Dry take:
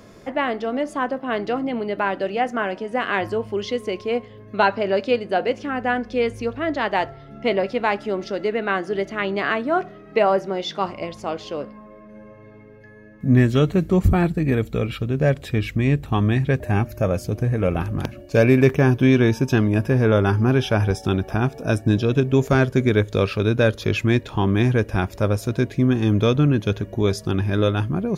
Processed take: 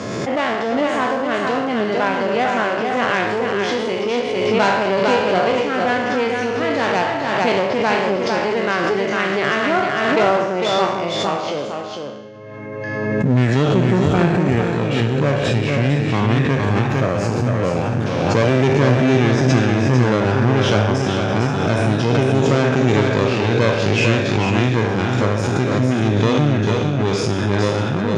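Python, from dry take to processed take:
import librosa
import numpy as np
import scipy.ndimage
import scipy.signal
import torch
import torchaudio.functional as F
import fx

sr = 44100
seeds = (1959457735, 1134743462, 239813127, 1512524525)

y = fx.spec_trails(x, sr, decay_s=0.99)
y = fx.clip_asym(y, sr, top_db=-25.0, bottom_db=-8.0)
y = scipy.signal.sosfilt(scipy.signal.cheby1(3, 1.0, [110.0, 7100.0], 'bandpass', fs=sr, output='sos'), y)
y = y + 10.0 ** (-4.5 / 20.0) * np.pad(y, (int(453 * sr / 1000.0), 0))[:len(y)]
y = fx.pre_swell(y, sr, db_per_s=25.0)
y = y * 10.0 ** (2.0 / 20.0)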